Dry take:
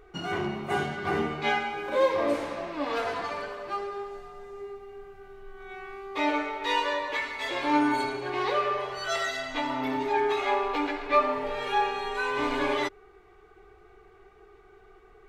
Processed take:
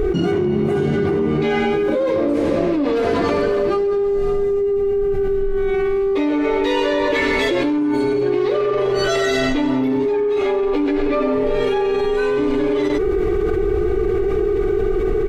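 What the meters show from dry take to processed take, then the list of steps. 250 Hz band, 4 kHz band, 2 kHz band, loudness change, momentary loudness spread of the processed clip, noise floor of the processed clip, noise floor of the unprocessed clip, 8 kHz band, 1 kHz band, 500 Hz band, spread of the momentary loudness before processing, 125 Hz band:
+14.5 dB, +5.5 dB, +5.0 dB, +10.0 dB, 2 LU, -19 dBFS, -55 dBFS, +7.5 dB, +1.5 dB, +14.5 dB, 17 LU, +16.5 dB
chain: resonant low shelf 570 Hz +12 dB, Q 1.5; soft clip -8.5 dBFS, distortion -19 dB; on a send: echo 97 ms -15 dB; on the sum: fast leveller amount 100%; gain -5.5 dB

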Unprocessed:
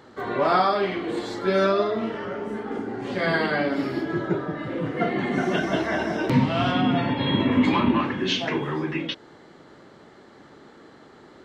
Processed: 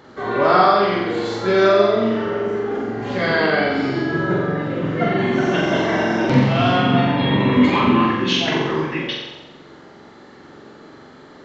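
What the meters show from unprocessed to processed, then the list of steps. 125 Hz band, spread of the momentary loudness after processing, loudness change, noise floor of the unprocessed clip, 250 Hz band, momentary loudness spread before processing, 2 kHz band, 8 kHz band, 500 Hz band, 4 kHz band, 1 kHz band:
+6.5 dB, 9 LU, +6.0 dB, -50 dBFS, +5.0 dB, 10 LU, +6.5 dB, n/a, +7.0 dB, +6.0 dB, +6.5 dB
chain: flutter echo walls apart 7.6 m, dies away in 0.96 s; downsampling 16000 Hz; gain +3 dB

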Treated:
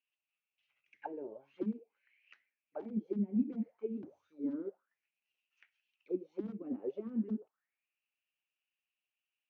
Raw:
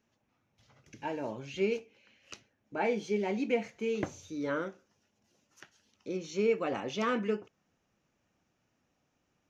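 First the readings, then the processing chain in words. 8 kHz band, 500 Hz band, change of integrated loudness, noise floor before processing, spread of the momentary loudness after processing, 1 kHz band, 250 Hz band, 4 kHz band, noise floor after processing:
n/a, -11.0 dB, -6.0 dB, -78 dBFS, 12 LU, -15.5 dB, -0.5 dB, under -25 dB, under -85 dBFS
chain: wrapped overs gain 21.5 dB; limiter -27 dBFS, peak gain reduction 5.5 dB; auto-wah 210–2800 Hz, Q 7.3, down, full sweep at -30.5 dBFS; air absorption 96 m; upward expander 1.5:1, over -56 dBFS; gain +10 dB

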